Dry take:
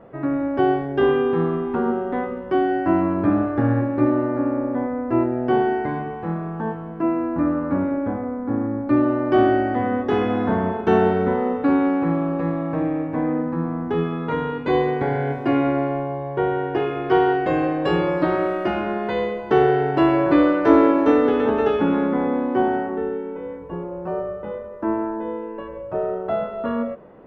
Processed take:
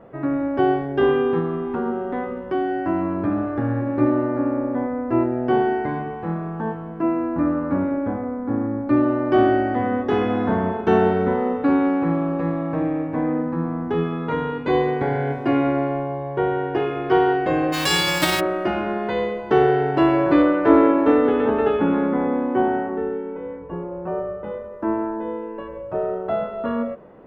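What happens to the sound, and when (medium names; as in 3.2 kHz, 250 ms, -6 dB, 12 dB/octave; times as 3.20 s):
1.39–3.87 s: compression 1.5:1, threshold -24 dBFS
17.72–18.39 s: formants flattened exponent 0.3
20.42–24.44 s: low-pass 3.2 kHz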